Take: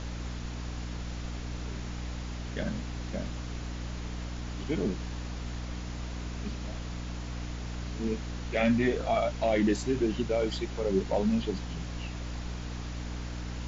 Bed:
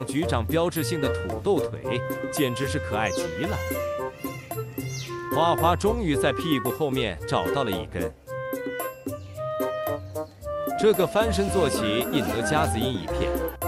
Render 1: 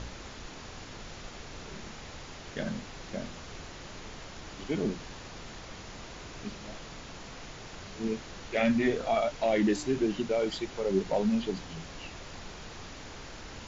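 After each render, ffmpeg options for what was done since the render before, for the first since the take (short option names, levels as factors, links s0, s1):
-af "bandreject=f=60:t=h:w=4,bandreject=f=120:t=h:w=4,bandreject=f=180:t=h:w=4,bandreject=f=240:t=h:w=4,bandreject=f=300:t=h:w=4"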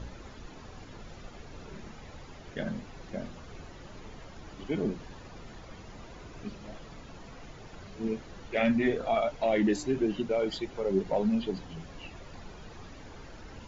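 -af "afftdn=nr=10:nf=-45"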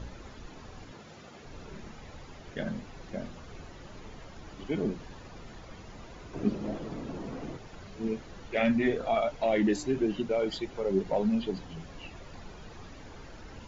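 -filter_complex "[0:a]asettb=1/sr,asplit=3[s0][s1][s2];[s0]atrim=end=0.914[s3];[s1]atrim=start=0.91:end=1.45,asetpts=PTS-STARTPTS,afade=t=in:d=0.004:c=qsin,afade=t=out:st=0.536:d=0.004:c=qsin,highpass=130[s4];[s2]atrim=start=1.446[s5];[s3][s4]acrossfade=d=0.004:c1=hsin:c2=qsin[s6];[s6][s5]acrossfade=d=0.004:c1=qsin:c2=hsin,asettb=1/sr,asplit=3[s7][s8][s9];[s7]atrim=end=6.334[s10];[s8]atrim=start=6.33:end=7.57,asetpts=PTS-STARTPTS,afade=t=in:d=0.004:c=qsin,afade=t=out:st=1.236:d=0.004:c=qsin,equalizer=f=300:t=o:w=2.5:g=14.5[s11];[s9]atrim=start=7.566[s12];[s10][s11]acrossfade=d=0.004:c1=hsin:c2=qsin[s13];[s13][s12]acrossfade=d=0.004:c1=qsin:c2=hsin"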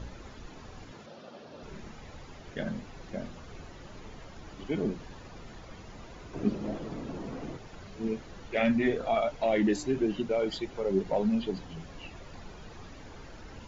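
-filter_complex "[0:a]asettb=1/sr,asplit=3[s0][s1][s2];[s0]atrim=end=1.064[s3];[s1]atrim=start=1.06:end=1.63,asetpts=PTS-STARTPTS,afade=t=in:d=0.004:c=qsin,afade=t=out:st=0.566:d=0.004:c=qsin,highpass=170,equalizer=f=230:t=q:w=4:g=4,equalizer=f=580:t=q:w=4:g=9,equalizer=f=2100:t=q:w=4:g=-8,lowpass=f=5500:w=0.5412,lowpass=f=5500:w=1.3066[s4];[s2]atrim=start=1.626[s5];[s3][s4]acrossfade=d=0.004:c1=hsin:c2=qsin[s6];[s6][s5]acrossfade=d=0.004:c1=qsin:c2=hsin"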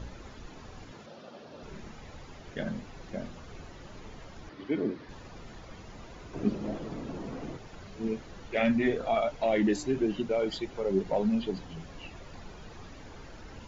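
-filter_complex "[0:a]asettb=1/sr,asplit=3[s0][s1][s2];[s0]atrim=end=4.494[s3];[s1]atrim=start=4.49:end=5.09,asetpts=PTS-STARTPTS,afade=t=in:d=0.004:c=qsin,afade=t=out:st=0.596:d=0.004:c=qsin,highpass=120,equalizer=f=180:t=q:w=4:g=-8,equalizer=f=300:t=q:w=4:g=5,equalizer=f=770:t=q:w=4:g=-5,equalizer=f=1900:t=q:w=4:g=4,equalizer=f=2800:t=q:w=4:g=-5,lowpass=f=4900:w=0.5412,lowpass=f=4900:w=1.3066[s4];[s2]atrim=start=5.086[s5];[s3][s4]acrossfade=d=0.004:c1=hsin:c2=qsin[s6];[s6][s5]acrossfade=d=0.004:c1=qsin:c2=hsin"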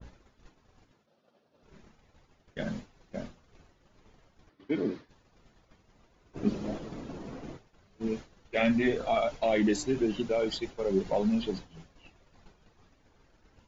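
-af "agate=range=0.0224:threshold=0.02:ratio=3:detection=peak,adynamicequalizer=threshold=0.00501:dfrequency=2800:dqfactor=0.7:tfrequency=2800:tqfactor=0.7:attack=5:release=100:ratio=0.375:range=2:mode=boostabove:tftype=highshelf"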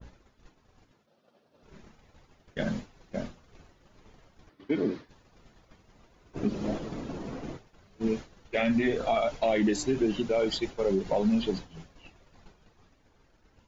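-af "dynaudnorm=f=120:g=21:m=1.58,alimiter=limit=0.133:level=0:latency=1:release=162"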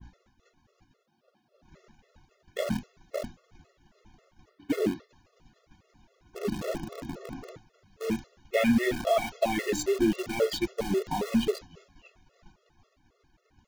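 -filter_complex "[0:a]asplit=2[s0][s1];[s1]acrusher=bits=4:mix=0:aa=0.000001,volume=0.562[s2];[s0][s2]amix=inputs=2:normalize=0,afftfilt=real='re*gt(sin(2*PI*3.7*pts/sr)*(1-2*mod(floor(b*sr/1024/360),2)),0)':imag='im*gt(sin(2*PI*3.7*pts/sr)*(1-2*mod(floor(b*sr/1024/360),2)),0)':win_size=1024:overlap=0.75"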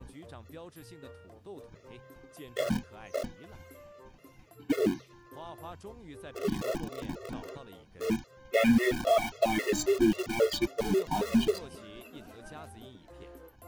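-filter_complex "[1:a]volume=0.0668[s0];[0:a][s0]amix=inputs=2:normalize=0"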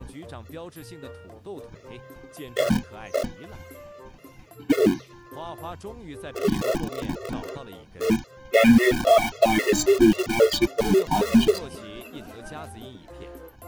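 -af "volume=2.51"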